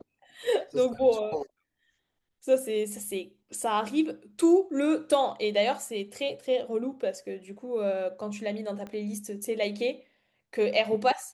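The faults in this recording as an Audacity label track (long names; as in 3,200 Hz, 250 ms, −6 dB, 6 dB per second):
8.870000	8.870000	click −27 dBFS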